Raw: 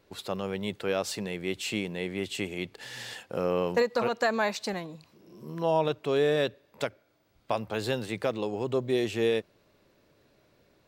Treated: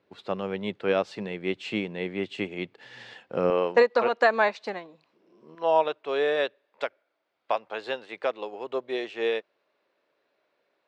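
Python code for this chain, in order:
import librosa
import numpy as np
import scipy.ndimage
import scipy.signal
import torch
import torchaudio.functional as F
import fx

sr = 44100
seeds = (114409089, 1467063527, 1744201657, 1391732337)

y = fx.bandpass_edges(x, sr, low_hz=fx.steps((0.0, 140.0), (3.5, 330.0), (5.55, 530.0)), high_hz=3200.0)
y = fx.upward_expand(y, sr, threshold_db=-46.0, expansion=1.5)
y = F.gain(torch.from_numpy(y), 7.5).numpy()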